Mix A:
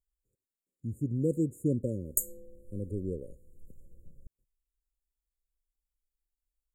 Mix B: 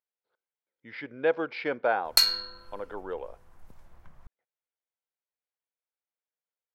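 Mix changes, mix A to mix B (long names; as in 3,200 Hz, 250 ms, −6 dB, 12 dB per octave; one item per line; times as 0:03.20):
speech: add loudspeaker in its box 460–3,200 Hz, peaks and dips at 490 Hz +10 dB, 820 Hz +3 dB, 1,200 Hz −6 dB, 1,800 Hz −7 dB, 2,700 Hz −6 dB
master: remove linear-phase brick-wall band-stop 570–6,700 Hz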